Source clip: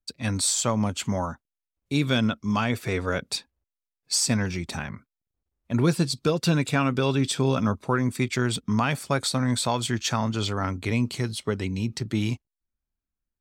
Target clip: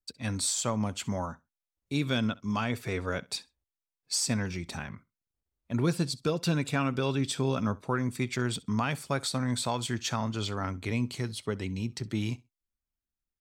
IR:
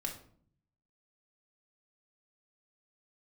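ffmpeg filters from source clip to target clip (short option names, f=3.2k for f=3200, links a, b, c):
-af "aecho=1:1:65|130:0.075|0.012,volume=-5.5dB"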